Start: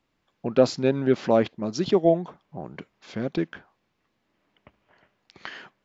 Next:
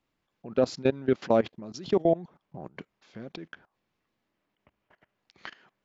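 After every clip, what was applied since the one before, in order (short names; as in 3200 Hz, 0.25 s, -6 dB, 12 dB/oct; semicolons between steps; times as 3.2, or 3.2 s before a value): level quantiser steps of 20 dB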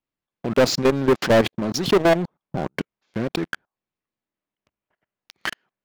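sample leveller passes 5; gain -1.5 dB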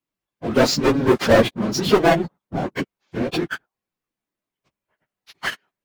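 phase scrambler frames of 50 ms; gain +2 dB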